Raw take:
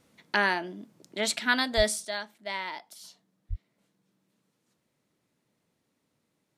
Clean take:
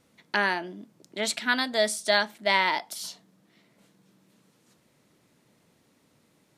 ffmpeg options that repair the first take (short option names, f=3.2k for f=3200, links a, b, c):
-filter_complex "[0:a]asplit=3[a][b][c];[a]afade=t=out:st=1.76:d=0.02[d];[b]highpass=f=140:w=0.5412,highpass=f=140:w=1.3066,afade=t=in:st=1.76:d=0.02,afade=t=out:st=1.88:d=0.02[e];[c]afade=t=in:st=1.88:d=0.02[f];[d][e][f]amix=inputs=3:normalize=0,asplit=3[g][h][i];[g]afade=t=out:st=3.49:d=0.02[j];[h]highpass=f=140:w=0.5412,highpass=f=140:w=1.3066,afade=t=in:st=3.49:d=0.02,afade=t=out:st=3.61:d=0.02[k];[i]afade=t=in:st=3.61:d=0.02[l];[j][k][l]amix=inputs=3:normalize=0,asetnsamples=n=441:p=0,asendcmd='2.05 volume volume 11.5dB',volume=0dB"